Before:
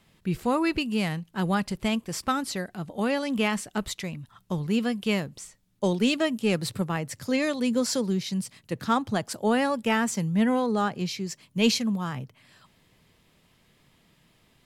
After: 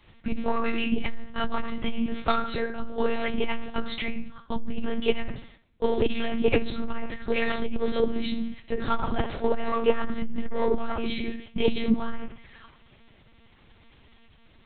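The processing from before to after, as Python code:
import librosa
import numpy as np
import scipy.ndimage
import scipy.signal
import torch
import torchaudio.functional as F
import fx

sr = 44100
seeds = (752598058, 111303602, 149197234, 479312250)

p1 = fx.spec_quant(x, sr, step_db=15)
p2 = fx.highpass(p1, sr, hz=110.0, slope=6)
p3 = fx.notch(p2, sr, hz=620.0, q=14.0)
p4 = np.clip(p3, -10.0 ** (-26.0 / 20.0), 10.0 ** (-26.0 / 20.0))
p5 = p3 + F.gain(torch.from_numpy(p4), -6.0).numpy()
p6 = fx.rev_fdn(p5, sr, rt60_s=0.47, lf_ratio=1.05, hf_ratio=0.85, size_ms=40.0, drr_db=-3.5)
p7 = fx.lpc_monotone(p6, sr, seeds[0], pitch_hz=230.0, order=10)
y = fx.transformer_sat(p7, sr, knee_hz=93.0)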